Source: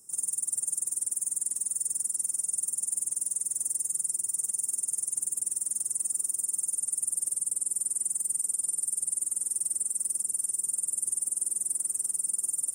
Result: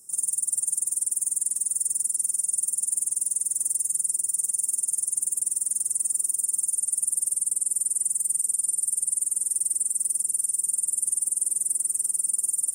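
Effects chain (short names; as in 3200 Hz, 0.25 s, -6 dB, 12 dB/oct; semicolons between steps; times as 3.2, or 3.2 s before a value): bell 12000 Hz +5.5 dB 1.4 oct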